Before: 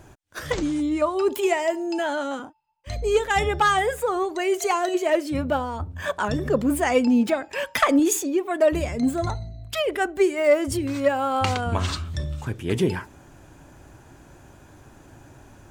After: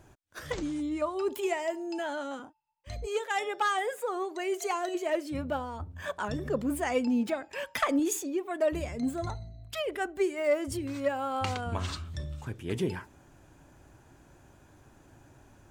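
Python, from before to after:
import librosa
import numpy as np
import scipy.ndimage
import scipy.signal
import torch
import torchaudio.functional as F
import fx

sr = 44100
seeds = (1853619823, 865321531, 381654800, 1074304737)

y = fx.highpass(x, sr, hz=fx.line((3.05, 450.0), (4.95, 170.0)), slope=24, at=(3.05, 4.95), fade=0.02)
y = y * 10.0 ** (-8.5 / 20.0)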